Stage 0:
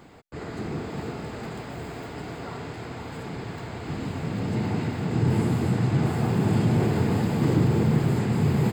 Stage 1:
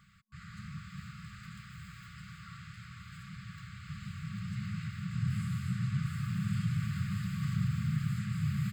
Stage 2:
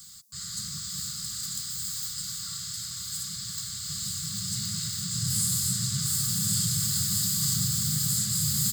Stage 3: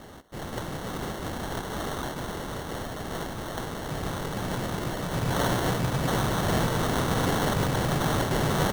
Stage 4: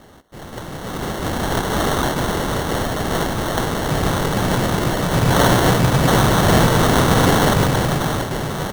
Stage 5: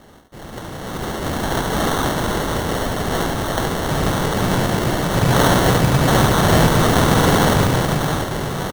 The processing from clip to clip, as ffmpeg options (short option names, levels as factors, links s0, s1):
-af "afftfilt=real='re*(1-between(b*sr/4096,210,1100))':imag='im*(1-between(b*sr/4096,210,1100))':win_size=4096:overlap=0.75,volume=0.355"
-af "aexciter=amount=12.5:drive=9.8:freq=4000"
-af "acrusher=samples=18:mix=1:aa=0.000001,volume=1.19"
-af "dynaudnorm=f=250:g=9:m=4.73"
-af "aecho=1:1:71:0.501,volume=0.891"